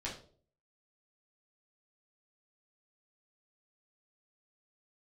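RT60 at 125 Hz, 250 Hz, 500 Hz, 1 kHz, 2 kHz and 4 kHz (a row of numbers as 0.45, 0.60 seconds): 0.65, 0.55, 0.60, 0.40, 0.30, 0.35 seconds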